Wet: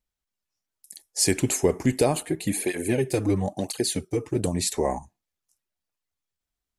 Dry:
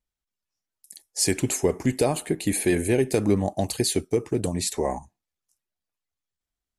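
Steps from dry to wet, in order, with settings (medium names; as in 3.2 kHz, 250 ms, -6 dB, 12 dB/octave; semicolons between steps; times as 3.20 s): 2.23–4.36 s: cancelling through-zero flanger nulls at 1 Hz, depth 5.6 ms; trim +1 dB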